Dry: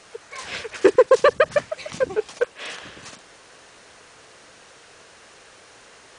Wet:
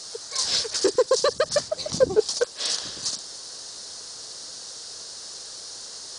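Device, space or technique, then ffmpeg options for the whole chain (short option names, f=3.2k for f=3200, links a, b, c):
over-bright horn tweeter: -filter_complex "[0:a]highshelf=f=3.4k:t=q:w=3:g=11.5,alimiter=limit=-10dB:level=0:latency=1:release=183,asettb=1/sr,asplit=3[a][b][c];[a]atrim=end=1.684[d];[b]atrim=start=1.68:end=2.2,asetpts=PTS-STARTPTS,afade=t=in:d=0.004:c=qsin,afade=t=out:st=0.516:d=0.004:c=qsin,tiltshelf=f=970:g=6.5[e];[c]atrim=start=2.196[f];[d][e]acrossfade=d=0.004:c1=hsin:c2=qsin[g];[g][f]acrossfade=d=0.004:c1=qsin:c2=hsin"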